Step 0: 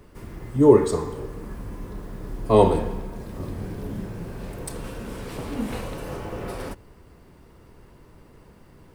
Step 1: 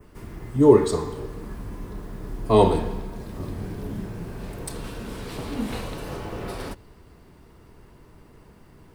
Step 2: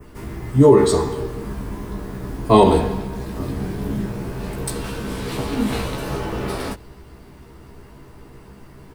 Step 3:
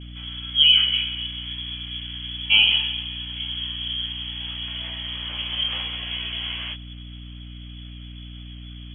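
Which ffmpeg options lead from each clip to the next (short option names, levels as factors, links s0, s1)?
-af "bandreject=f=530:w=12,adynamicequalizer=threshold=0.00178:dfrequency=4000:dqfactor=1.9:tfrequency=4000:tqfactor=1.9:attack=5:release=100:ratio=0.375:range=2.5:mode=boostabove:tftype=bell"
-filter_complex "[0:a]asplit=2[s0][s1];[s1]adelay=15,volume=0.668[s2];[s0][s2]amix=inputs=2:normalize=0,alimiter=level_in=2.24:limit=0.891:release=50:level=0:latency=1,volume=0.891"
-af "lowpass=f=2900:t=q:w=0.5098,lowpass=f=2900:t=q:w=0.6013,lowpass=f=2900:t=q:w=0.9,lowpass=f=2900:t=q:w=2.563,afreqshift=-3400,aeval=exprs='val(0)+0.0251*(sin(2*PI*60*n/s)+sin(2*PI*2*60*n/s)/2+sin(2*PI*3*60*n/s)/3+sin(2*PI*4*60*n/s)/4+sin(2*PI*5*60*n/s)/5)':c=same,volume=0.562"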